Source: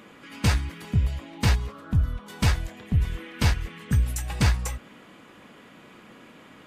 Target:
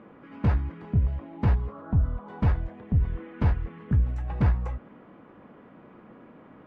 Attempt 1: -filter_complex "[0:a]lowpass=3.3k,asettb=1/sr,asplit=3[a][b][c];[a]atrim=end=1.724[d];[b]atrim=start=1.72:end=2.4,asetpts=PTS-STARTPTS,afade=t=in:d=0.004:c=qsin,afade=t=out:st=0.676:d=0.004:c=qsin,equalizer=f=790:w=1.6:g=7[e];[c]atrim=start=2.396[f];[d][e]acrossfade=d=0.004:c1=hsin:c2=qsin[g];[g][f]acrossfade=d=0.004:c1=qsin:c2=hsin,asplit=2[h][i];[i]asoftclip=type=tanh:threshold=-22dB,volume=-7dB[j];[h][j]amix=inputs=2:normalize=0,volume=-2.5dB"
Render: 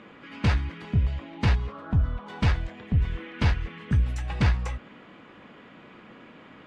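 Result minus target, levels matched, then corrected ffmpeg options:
4000 Hz band +16.0 dB
-filter_complex "[0:a]lowpass=1.1k,asettb=1/sr,asplit=3[a][b][c];[a]atrim=end=1.724[d];[b]atrim=start=1.72:end=2.4,asetpts=PTS-STARTPTS,afade=t=in:d=0.004:c=qsin,afade=t=out:st=0.676:d=0.004:c=qsin,equalizer=f=790:w=1.6:g=7[e];[c]atrim=start=2.396[f];[d][e]acrossfade=d=0.004:c1=hsin:c2=qsin[g];[g][f]acrossfade=d=0.004:c1=qsin:c2=hsin,asplit=2[h][i];[i]asoftclip=type=tanh:threshold=-22dB,volume=-7dB[j];[h][j]amix=inputs=2:normalize=0,volume=-2.5dB"

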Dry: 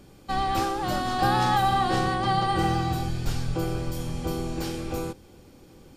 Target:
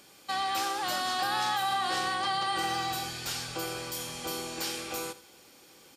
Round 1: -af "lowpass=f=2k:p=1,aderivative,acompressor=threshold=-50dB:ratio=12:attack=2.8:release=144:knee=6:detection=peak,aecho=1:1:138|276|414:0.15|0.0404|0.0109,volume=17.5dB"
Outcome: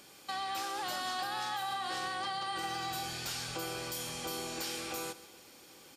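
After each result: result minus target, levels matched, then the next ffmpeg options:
echo 57 ms late; compressor: peak gain reduction +7.5 dB
-af "lowpass=f=2k:p=1,aderivative,acompressor=threshold=-50dB:ratio=12:attack=2.8:release=144:knee=6:detection=peak,aecho=1:1:81|162|243:0.15|0.0404|0.0109,volume=17.5dB"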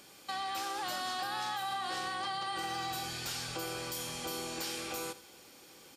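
compressor: peak gain reduction +7.5 dB
-af "lowpass=f=2k:p=1,aderivative,acompressor=threshold=-42dB:ratio=12:attack=2.8:release=144:knee=6:detection=peak,aecho=1:1:81|162|243:0.15|0.0404|0.0109,volume=17.5dB"

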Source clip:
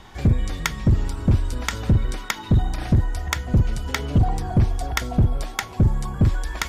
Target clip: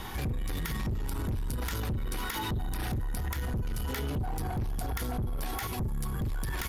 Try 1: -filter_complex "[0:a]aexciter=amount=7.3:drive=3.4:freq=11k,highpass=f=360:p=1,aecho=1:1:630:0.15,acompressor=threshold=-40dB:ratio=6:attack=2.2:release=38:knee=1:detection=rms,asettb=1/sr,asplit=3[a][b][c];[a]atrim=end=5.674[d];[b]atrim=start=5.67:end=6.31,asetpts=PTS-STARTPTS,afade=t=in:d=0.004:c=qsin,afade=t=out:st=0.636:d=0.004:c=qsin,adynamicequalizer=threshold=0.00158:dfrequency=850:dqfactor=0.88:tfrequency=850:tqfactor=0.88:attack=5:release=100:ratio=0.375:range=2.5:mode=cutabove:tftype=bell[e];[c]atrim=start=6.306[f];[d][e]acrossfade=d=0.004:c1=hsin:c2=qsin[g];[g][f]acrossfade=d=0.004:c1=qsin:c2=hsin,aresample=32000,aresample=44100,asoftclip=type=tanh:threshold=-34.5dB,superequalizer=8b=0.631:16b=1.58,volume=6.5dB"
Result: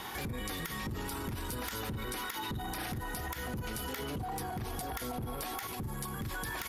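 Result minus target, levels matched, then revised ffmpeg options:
compressor: peak gain reduction +6.5 dB; 500 Hz band +3.0 dB
-filter_complex "[0:a]aexciter=amount=7.3:drive=3.4:freq=11k,aecho=1:1:630:0.15,acompressor=threshold=-32dB:ratio=6:attack=2.2:release=38:knee=1:detection=rms,asettb=1/sr,asplit=3[a][b][c];[a]atrim=end=5.674[d];[b]atrim=start=5.67:end=6.31,asetpts=PTS-STARTPTS,afade=t=in:d=0.004:c=qsin,afade=t=out:st=0.636:d=0.004:c=qsin,adynamicequalizer=threshold=0.00158:dfrequency=850:dqfactor=0.88:tfrequency=850:tqfactor=0.88:attack=5:release=100:ratio=0.375:range=2.5:mode=cutabove:tftype=bell[e];[c]atrim=start=6.306[f];[d][e]acrossfade=d=0.004:c1=hsin:c2=qsin[g];[g][f]acrossfade=d=0.004:c1=qsin:c2=hsin,aresample=32000,aresample=44100,asoftclip=type=tanh:threshold=-34.5dB,superequalizer=8b=0.631:16b=1.58,volume=6.5dB"

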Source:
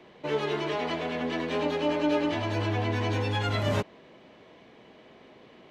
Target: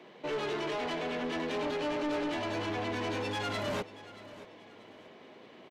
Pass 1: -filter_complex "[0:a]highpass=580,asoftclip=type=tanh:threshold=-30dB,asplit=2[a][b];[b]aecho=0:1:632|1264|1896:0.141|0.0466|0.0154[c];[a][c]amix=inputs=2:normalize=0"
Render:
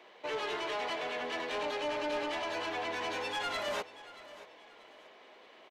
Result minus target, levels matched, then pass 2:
250 Hz band -7.5 dB
-filter_complex "[0:a]highpass=180,asoftclip=type=tanh:threshold=-30dB,asplit=2[a][b];[b]aecho=0:1:632|1264|1896:0.141|0.0466|0.0154[c];[a][c]amix=inputs=2:normalize=0"

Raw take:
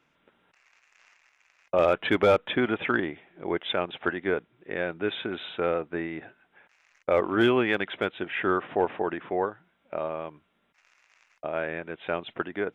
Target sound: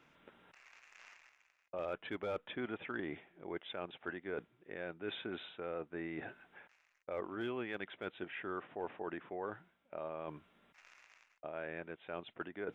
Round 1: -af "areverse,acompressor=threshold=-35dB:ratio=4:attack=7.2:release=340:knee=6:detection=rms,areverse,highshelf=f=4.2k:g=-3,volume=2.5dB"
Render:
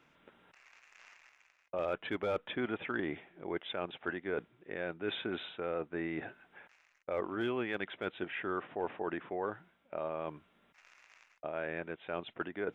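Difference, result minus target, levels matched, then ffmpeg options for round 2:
compressor: peak gain reduction -5 dB
-af "areverse,acompressor=threshold=-42dB:ratio=4:attack=7.2:release=340:knee=6:detection=rms,areverse,highshelf=f=4.2k:g=-3,volume=2.5dB"

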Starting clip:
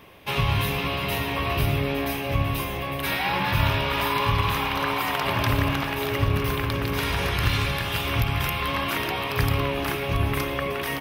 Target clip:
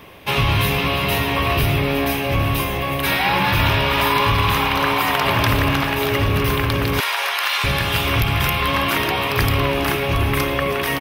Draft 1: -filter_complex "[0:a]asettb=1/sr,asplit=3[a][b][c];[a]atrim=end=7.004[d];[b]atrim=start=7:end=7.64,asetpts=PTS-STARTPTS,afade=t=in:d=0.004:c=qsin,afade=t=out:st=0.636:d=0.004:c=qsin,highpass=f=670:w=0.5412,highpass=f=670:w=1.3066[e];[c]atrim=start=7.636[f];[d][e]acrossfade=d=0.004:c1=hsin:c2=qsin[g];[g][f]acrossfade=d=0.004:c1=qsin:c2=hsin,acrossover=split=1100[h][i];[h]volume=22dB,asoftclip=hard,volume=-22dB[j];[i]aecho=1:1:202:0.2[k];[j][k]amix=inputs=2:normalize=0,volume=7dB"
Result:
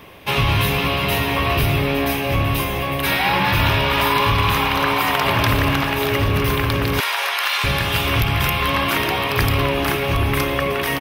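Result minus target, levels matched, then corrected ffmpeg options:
echo 0.123 s early
-filter_complex "[0:a]asettb=1/sr,asplit=3[a][b][c];[a]atrim=end=7.004[d];[b]atrim=start=7:end=7.64,asetpts=PTS-STARTPTS,afade=t=in:d=0.004:c=qsin,afade=t=out:st=0.636:d=0.004:c=qsin,highpass=f=670:w=0.5412,highpass=f=670:w=1.3066[e];[c]atrim=start=7.636[f];[d][e]acrossfade=d=0.004:c1=hsin:c2=qsin[g];[g][f]acrossfade=d=0.004:c1=qsin:c2=hsin,acrossover=split=1100[h][i];[h]volume=22dB,asoftclip=hard,volume=-22dB[j];[i]aecho=1:1:325:0.2[k];[j][k]amix=inputs=2:normalize=0,volume=7dB"

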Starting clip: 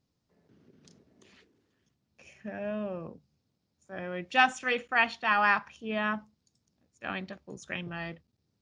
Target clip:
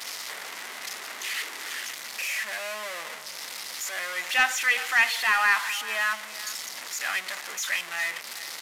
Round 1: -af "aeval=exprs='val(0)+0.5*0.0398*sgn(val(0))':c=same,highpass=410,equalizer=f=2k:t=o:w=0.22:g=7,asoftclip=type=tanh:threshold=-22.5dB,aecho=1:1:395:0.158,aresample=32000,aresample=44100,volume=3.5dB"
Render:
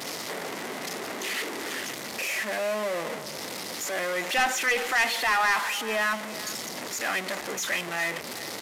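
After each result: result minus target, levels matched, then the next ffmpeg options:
500 Hz band +11.5 dB; soft clip: distortion +9 dB
-af "aeval=exprs='val(0)+0.5*0.0398*sgn(val(0))':c=same,highpass=1.2k,equalizer=f=2k:t=o:w=0.22:g=7,asoftclip=type=tanh:threshold=-22.5dB,aecho=1:1:395:0.158,aresample=32000,aresample=44100,volume=3.5dB"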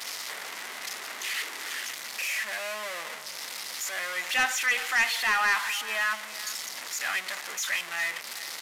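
soft clip: distortion +8 dB
-af "aeval=exprs='val(0)+0.5*0.0398*sgn(val(0))':c=same,highpass=1.2k,equalizer=f=2k:t=o:w=0.22:g=7,asoftclip=type=tanh:threshold=-15.5dB,aecho=1:1:395:0.158,aresample=32000,aresample=44100,volume=3.5dB"

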